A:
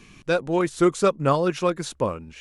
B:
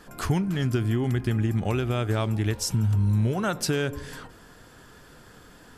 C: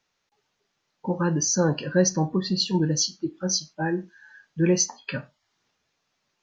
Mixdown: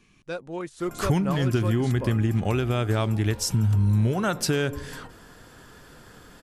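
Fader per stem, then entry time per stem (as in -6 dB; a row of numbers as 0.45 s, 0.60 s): -11.0 dB, +1.5 dB, mute; 0.00 s, 0.80 s, mute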